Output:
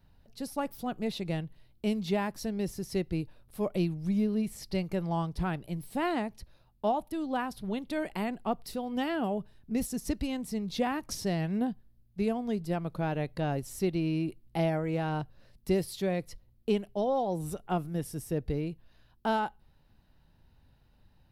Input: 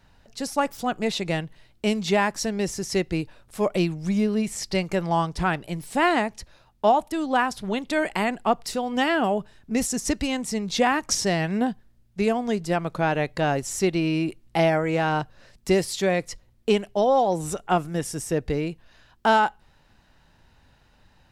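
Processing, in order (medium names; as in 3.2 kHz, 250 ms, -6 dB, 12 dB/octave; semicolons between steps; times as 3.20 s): FFT filter 130 Hz 0 dB, 1.8 kHz -11 dB, 4.3 kHz -7 dB, 7.2 kHz -15 dB, 12 kHz 0 dB; trim -3 dB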